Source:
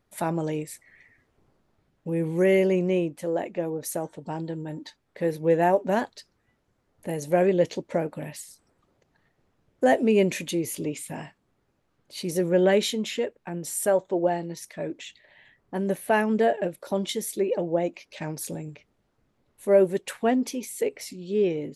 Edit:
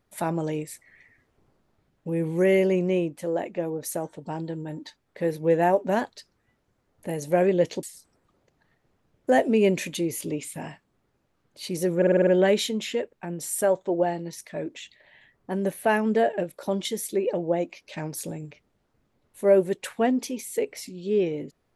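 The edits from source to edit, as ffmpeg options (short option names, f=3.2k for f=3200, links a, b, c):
-filter_complex "[0:a]asplit=8[a][b][c][d][e][f][g][h];[a]atrim=end=7.832[i];[b]atrim=start=8.368:end=12.562[j];[c]atrim=start=12.508:end=12.562[k];[d]atrim=start=12.508:end=12.562[l];[e]atrim=start=12.508:end=12.562[m];[f]atrim=start=12.508:end=12.562[n];[g]atrim=start=12.508:end=12.562[o];[h]atrim=start=12.508[p];[i][j]acrossfade=d=0.004:c1=hsin:c2=hsin[q];[q][k]acrossfade=d=0.004:c1=hsin:c2=hsin[r];[r][l]acrossfade=d=0.004:c1=hsin:c2=hsin[s];[s][m]acrossfade=d=0.004:c1=hsin:c2=hsin[t];[t][n]acrossfade=d=0.004:c1=hsin:c2=hsin[u];[u][o]acrossfade=d=0.004:c1=hsin:c2=hsin[v];[v][p]acrossfade=d=0.004:c1=hsin:c2=hsin"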